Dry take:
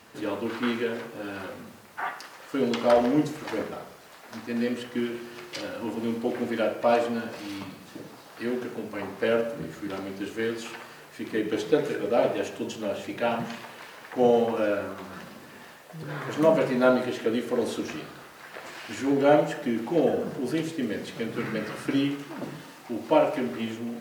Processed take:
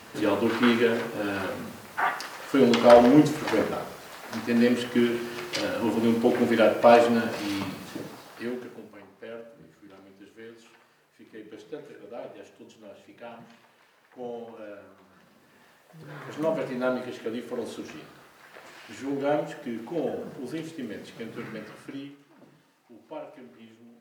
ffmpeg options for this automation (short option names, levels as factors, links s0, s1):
-af "volume=6.31,afade=t=out:st=7.82:d=0.75:silence=0.266073,afade=t=out:st=8.57:d=0.48:silence=0.281838,afade=t=in:st=15.16:d=1.09:silence=0.316228,afade=t=out:st=21.42:d=0.74:silence=0.251189"